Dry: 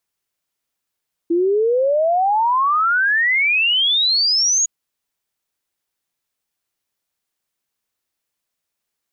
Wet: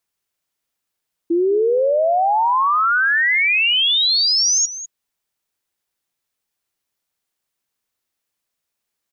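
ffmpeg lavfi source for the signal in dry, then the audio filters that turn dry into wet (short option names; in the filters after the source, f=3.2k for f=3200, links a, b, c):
-f lavfi -i "aevalsrc='0.211*clip(min(t,3.36-t)/0.01,0,1)*sin(2*PI*330*3.36/log(6800/330)*(exp(log(6800/330)*t/3.36)-1))':d=3.36:s=44100"
-af "aecho=1:1:201:0.211"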